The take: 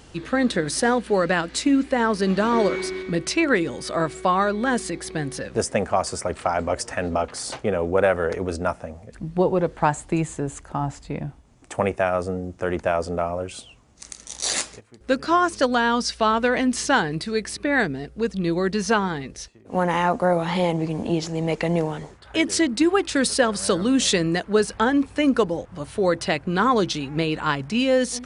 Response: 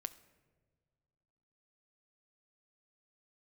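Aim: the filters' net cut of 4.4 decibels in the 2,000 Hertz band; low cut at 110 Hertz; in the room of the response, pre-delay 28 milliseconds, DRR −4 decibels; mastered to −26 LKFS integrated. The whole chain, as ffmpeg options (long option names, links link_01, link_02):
-filter_complex "[0:a]highpass=110,equalizer=frequency=2000:width_type=o:gain=-6,asplit=2[link_01][link_02];[1:a]atrim=start_sample=2205,adelay=28[link_03];[link_02][link_03]afir=irnorm=-1:irlink=0,volume=7dB[link_04];[link_01][link_04]amix=inputs=2:normalize=0,volume=-8dB"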